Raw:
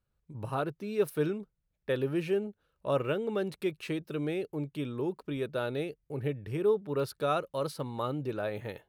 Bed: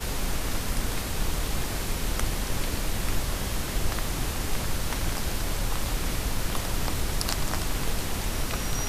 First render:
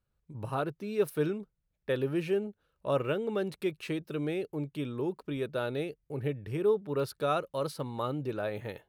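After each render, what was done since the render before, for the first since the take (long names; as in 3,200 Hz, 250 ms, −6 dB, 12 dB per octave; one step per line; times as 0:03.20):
no processing that can be heard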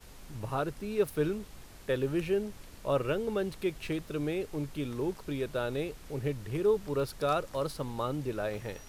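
mix in bed −21.5 dB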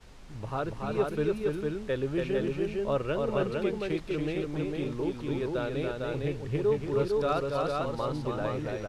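high-frequency loss of the air 72 metres
on a send: multi-tap delay 283/455 ms −4/−3 dB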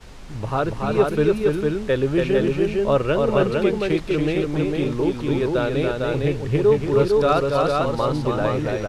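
level +10 dB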